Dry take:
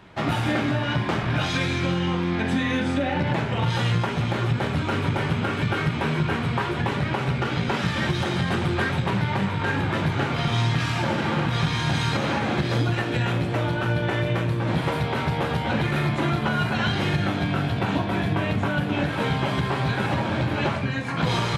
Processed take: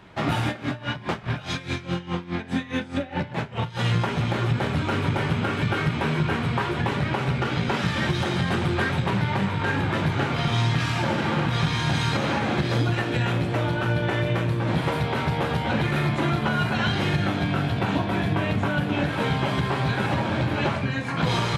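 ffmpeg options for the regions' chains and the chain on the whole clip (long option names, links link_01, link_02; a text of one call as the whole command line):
ffmpeg -i in.wav -filter_complex "[0:a]asettb=1/sr,asplit=3[link_01][link_02][link_03];[link_01]atrim=end=0.484[link_04];[link_02]atrim=start=0.48:end=3.84,asetpts=PTS-STARTPTS,afade=type=in:duration=0.004:curve=qsin,afade=type=out:start_time=3.356:duration=0.004:curve=qsin,bandreject=frequency=310:width=8.9,aeval=exprs='val(0)*pow(10,-18*(0.5-0.5*cos(2*PI*4.8*n/s))/20)':channel_layout=same[link_05];[link_03]atrim=start=3.836[link_06];[link_04][link_05]acrossfade=duration=0.004:curve1=hsin:curve2=qsin[link_07];[link_07][link_06]acrossfade=duration=0.004:curve1=qsin:curve2=hsin" out.wav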